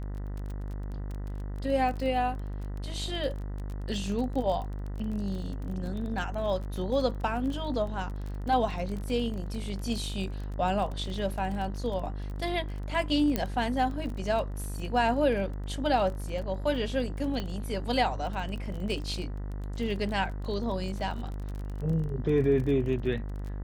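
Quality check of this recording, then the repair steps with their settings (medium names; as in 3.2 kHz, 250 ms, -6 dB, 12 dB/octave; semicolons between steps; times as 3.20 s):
buzz 50 Hz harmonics 40 -35 dBFS
crackle 23 per s -35 dBFS
13.36 s: pop -13 dBFS
17.40 s: pop -20 dBFS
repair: de-click; de-hum 50 Hz, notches 40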